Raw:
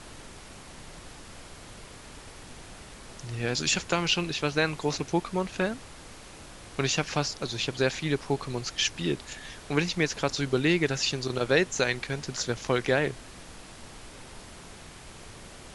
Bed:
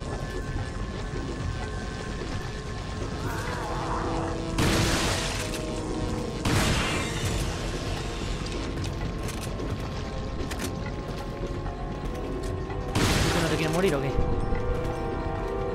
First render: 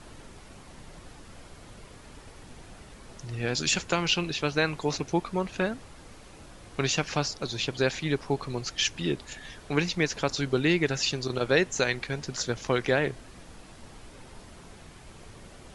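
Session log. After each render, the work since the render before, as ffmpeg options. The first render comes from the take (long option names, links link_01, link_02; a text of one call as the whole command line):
ffmpeg -i in.wav -af "afftdn=noise_reduction=6:noise_floor=-47" out.wav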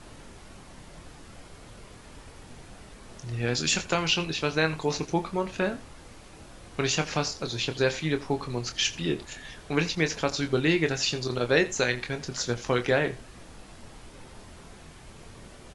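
ffmpeg -i in.wav -filter_complex "[0:a]asplit=2[link_01][link_02];[link_02]adelay=25,volume=-8.5dB[link_03];[link_01][link_03]amix=inputs=2:normalize=0,aecho=1:1:84:0.119" out.wav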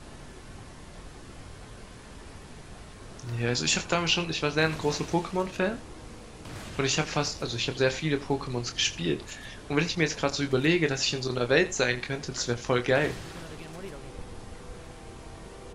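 ffmpeg -i in.wav -i bed.wav -filter_complex "[1:a]volume=-17.5dB[link_01];[0:a][link_01]amix=inputs=2:normalize=0" out.wav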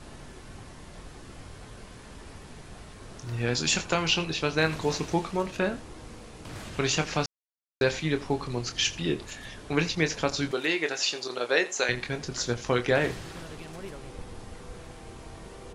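ffmpeg -i in.wav -filter_complex "[0:a]asettb=1/sr,asplit=3[link_01][link_02][link_03];[link_01]atrim=end=10.514[link_04];[link_02]atrim=start=10.51:end=11.89,asetpts=PTS-STARTPTS,afade=type=in:duration=0.004:curve=qsin,afade=type=out:start_time=1.376:duration=0.004:curve=qsin,highpass=440[link_05];[link_03]atrim=start=11.886[link_06];[link_04][link_05]acrossfade=duration=0.004:curve1=hsin:curve2=qsin[link_07];[link_07][link_06]acrossfade=duration=0.004:curve1=qsin:curve2=hsin,asplit=3[link_08][link_09][link_10];[link_08]atrim=end=7.26,asetpts=PTS-STARTPTS,afade=type=out:start_time=7.256:duration=0.004:curve=hsin[link_11];[link_09]atrim=start=7.26:end=7.81,asetpts=PTS-STARTPTS,volume=0[link_12];[link_10]atrim=start=7.81,asetpts=PTS-STARTPTS,afade=type=in:duration=0.004:curve=hsin[link_13];[link_11][link_12][link_13]concat=n=3:v=0:a=1" out.wav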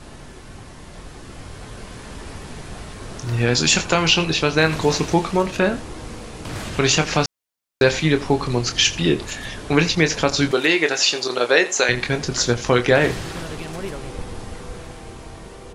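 ffmpeg -i in.wav -filter_complex "[0:a]dynaudnorm=framelen=660:gausssize=5:maxgain=6dB,asplit=2[link_01][link_02];[link_02]alimiter=limit=-12.5dB:level=0:latency=1:release=152,volume=-1.5dB[link_03];[link_01][link_03]amix=inputs=2:normalize=0" out.wav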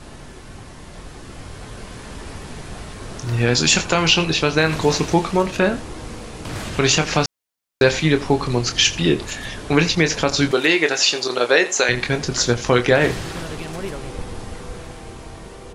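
ffmpeg -i in.wav -af "volume=1dB,alimiter=limit=-3dB:level=0:latency=1" out.wav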